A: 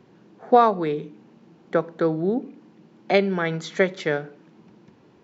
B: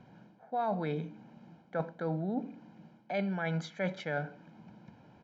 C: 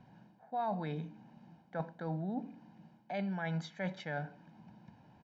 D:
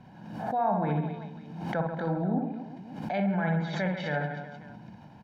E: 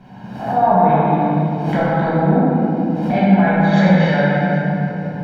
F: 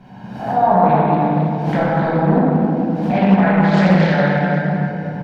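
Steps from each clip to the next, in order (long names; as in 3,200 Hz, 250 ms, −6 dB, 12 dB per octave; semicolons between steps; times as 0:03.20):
high-shelf EQ 4,500 Hz −10.5 dB; comb filter 1.3 ms, depth 69%; reversed playback; downward compressor 16 to 1, threshold −27 dBFS, peak gain reduction 19.5 dB; reversed playback; level −2.5 dB
comb filter 1.1 ms, depth 36%; level −4 dB
reverse bouncing-ball delay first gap 60 ms, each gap 1.3×, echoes 5; treble cut that deepens with the level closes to 1,700 Hz, closed at −30.5 dBFS; background raised ahead of every attack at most 56 dB per second; level +7 dB
rectangular room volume 180 cubic metres, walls hard, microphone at 1.3 metres; level +5 dB
single-tap delay 252 ms −14.5 dB; highs frequency-modulated by the lows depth 0.37 ms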